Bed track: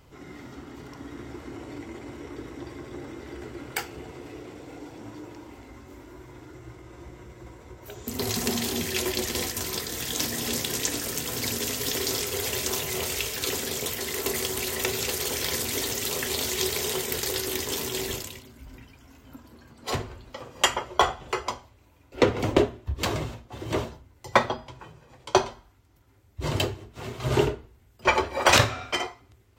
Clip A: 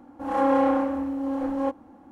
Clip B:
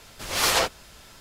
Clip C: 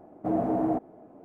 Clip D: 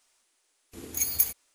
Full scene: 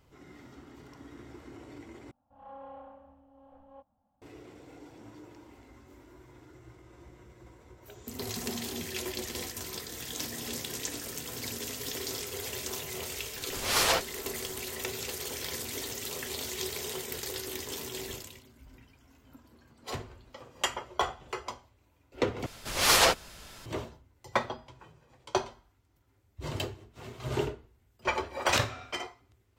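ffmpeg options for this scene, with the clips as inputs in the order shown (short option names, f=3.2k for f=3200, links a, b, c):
-filter_complex "[2:a]asplit=2[a][b];[0:a]volume=-8.5dB[c];[1:a]firequalizer=gain_entry='entry(110,0);entry(210,-6);entry(350,-30);entry(600,-2);entry(900,-7);entry(2100,-16);entry(3000,-6);entry(5500,-27)':delay=0.05:min_phase=1[d];[c]asplit=3[e][f][g];[e]atrim=end=2.114[h];[d]atrim=end=2.11,asetpts=PTS-STARTPTS,volume=-17dB[i];[f]atrim=start=4.216:end=22.464[j];[b]atrim=end=1.2[k];[g]atrim=start=23.656[l];[a]atrim=end=1.2,asetpts=PTS-STARTPTS,volume=-4dB,afade=t=in:d=0.004:c=hsin,afade=t=out:st=1.196:d=0.004:c=hsin,adelay=13330[m];[h][i]acrossfade=d=0.004:c1=hsin:c2=hsin[n];[n][j]acrossfade=d=0.004:c1=hsin:c2=hsin[o];[o][k]acrossfade=d=0.004:c1=hsin:c2=hsin[p];[p][l]acrossfade=d=0.004:c1=hsin:c2=hsin[q];[q][m]amix=inputs=2:normalize=0"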